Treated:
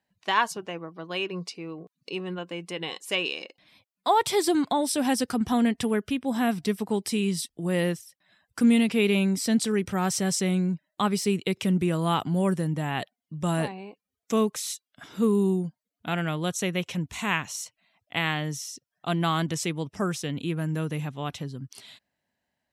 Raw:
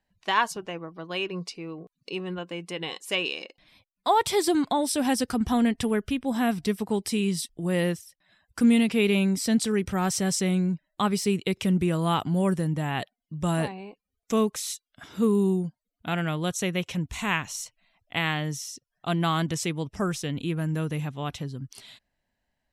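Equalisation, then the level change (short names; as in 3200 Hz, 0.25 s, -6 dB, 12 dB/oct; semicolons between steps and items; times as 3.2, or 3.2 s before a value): HPF 110 Hz; 0.0 dB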